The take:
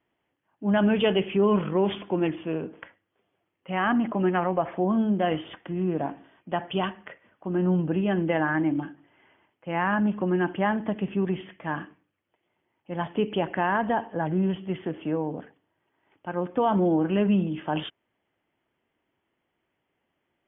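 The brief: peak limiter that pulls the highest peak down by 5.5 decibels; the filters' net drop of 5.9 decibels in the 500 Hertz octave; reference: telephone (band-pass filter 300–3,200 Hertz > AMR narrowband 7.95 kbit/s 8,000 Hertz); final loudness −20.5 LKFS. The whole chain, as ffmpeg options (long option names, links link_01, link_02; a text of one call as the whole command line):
ffmpeg -i in.wav -af "equalizer=frequency=500:width_type=o:gain=-7,alimiter=limit=-19dB:level=0:latency=1,highpass=300,lowpass=3200,volume=13.5dB" -ar 8000 -c:a libopencore_amrnb -b:a 7950 out.amr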